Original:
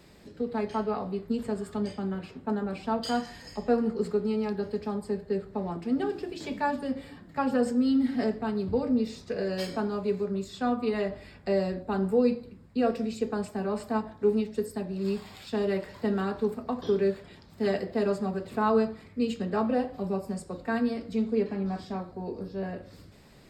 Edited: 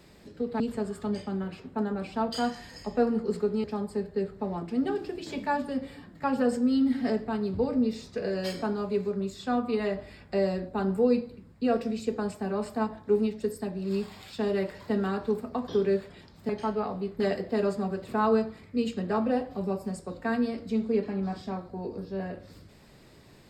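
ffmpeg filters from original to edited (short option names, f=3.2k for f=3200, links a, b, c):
-filter_complex "[0:a]asplit=5[a][b][c][d][e];[a]atrim=end=0.602[f];[b]atrim=start=1.308:end=4.352[g];[c]atrim=start=4.778:end=17.632[h];[d]atrim=start=0.598:end=1.312[i];[e]atrim=start=17.628[j];[f][g]acrossfade=d=0.004:c1=hsin:c2=hsin[k];[k][h]acrossfade=d=0.004:c1=hsin:c2=hsin[l];[l][i]acrossfade=d=0.004:c1=hsin:c2=hsin[m];[m][j]acrossfade=d=0.004:c1=hsin:c2=hsin"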